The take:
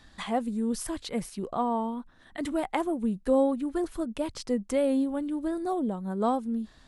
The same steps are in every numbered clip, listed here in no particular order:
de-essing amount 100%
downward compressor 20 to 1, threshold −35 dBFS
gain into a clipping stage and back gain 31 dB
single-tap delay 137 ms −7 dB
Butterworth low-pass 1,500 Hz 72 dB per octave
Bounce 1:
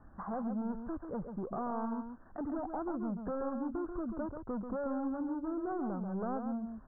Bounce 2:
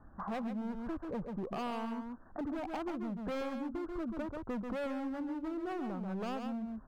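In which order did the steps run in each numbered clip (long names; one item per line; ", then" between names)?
gain into a clipping stage and back, then downward compressor, then single-tap delay, then de-essing, then Butterworth low-pass
Butterworth low-pass, then gain into a clipping stage and back, then single-tap delay, then downward compressor, then de-essing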